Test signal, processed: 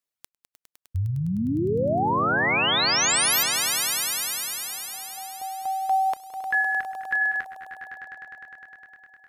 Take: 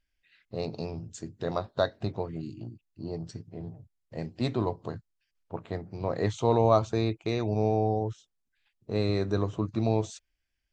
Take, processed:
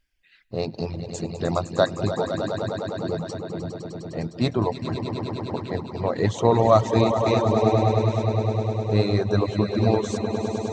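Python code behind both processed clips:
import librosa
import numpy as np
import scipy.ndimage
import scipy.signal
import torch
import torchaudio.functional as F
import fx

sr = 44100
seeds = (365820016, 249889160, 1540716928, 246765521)

y = fx.echo_swell(x, sr, ms=102, loudest=5, wet_db=-9.0)
y = fx.dereverb_blind(y, sr, rt60_s=0.97)
y = y * 10.0 ** (6.5 / 20.0)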